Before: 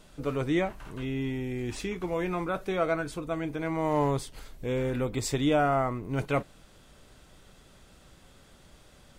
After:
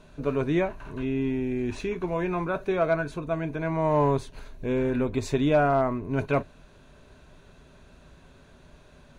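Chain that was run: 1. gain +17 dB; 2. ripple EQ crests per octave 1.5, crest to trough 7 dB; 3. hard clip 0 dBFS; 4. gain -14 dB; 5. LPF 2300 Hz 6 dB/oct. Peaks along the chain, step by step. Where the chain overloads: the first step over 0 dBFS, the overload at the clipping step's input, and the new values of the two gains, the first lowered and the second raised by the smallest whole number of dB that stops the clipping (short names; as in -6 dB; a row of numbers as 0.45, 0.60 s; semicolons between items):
+2.5, +4.0, 0.0, -14.0, -14.0 dBFS; step 1, 4.0 dB; step 1 +13 dB, step 4 -10 dB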